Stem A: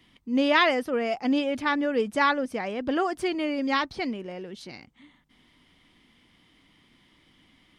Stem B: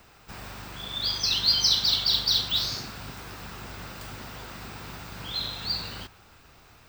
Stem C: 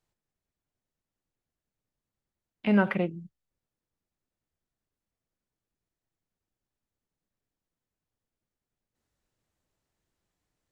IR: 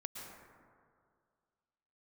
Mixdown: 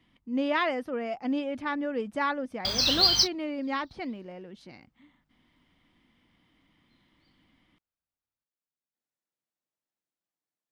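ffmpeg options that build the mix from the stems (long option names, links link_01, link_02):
-filter_complex "[0:a]highshelf=frequency=3100:gain=-10,volume=-4.5dB[link_01];[1:a]adelay=1550,volume=0.5dB[link_02];[2:a]highpass=230,alimiter=limit=-20.5dB:level=0:latency=1,volume=-12.5dB,asplit=2[link_03][link_04];[link_04]apad=whole_len=372078[link_05];[link_02][link_05]sidechaingate=range=-47dB:threshold=-58dB:ratio=16:detection=peak[link_06];[link_01][link_06][link_03]amix=inputs=3:normalize=0,equalizer=frequency=410:width=7.1:gain=-6.5"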